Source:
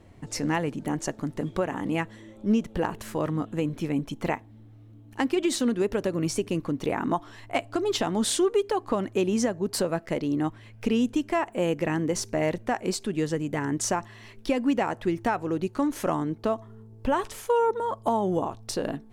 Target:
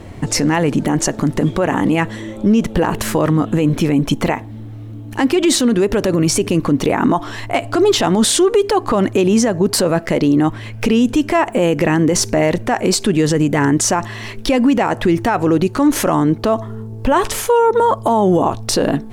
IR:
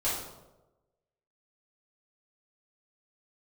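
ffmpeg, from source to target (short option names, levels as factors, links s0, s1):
-af "alimiter=level_in=15:limit=0.891:release=50:level=0:latency=1,volume=0.562"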